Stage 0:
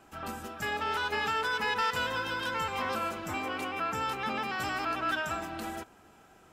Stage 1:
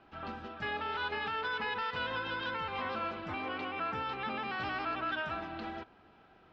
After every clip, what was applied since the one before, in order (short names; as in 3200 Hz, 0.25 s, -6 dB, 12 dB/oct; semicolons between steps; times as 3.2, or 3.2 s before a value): steep low-pass 4400 Hz 36 dB/oct; limiter -23.5 dBFS, peak gain reduction 4.5 dB; gain -3 dB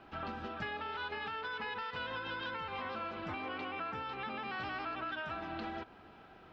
compressor 6:1, threshold -42 dBFS, peak gain reduction 10 dB; gain +4.5 dB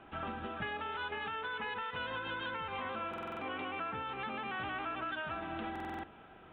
downsampling 8000 Hz; stuck buffer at 3.09/5.71, samples 2048, times 6; gain +1 dB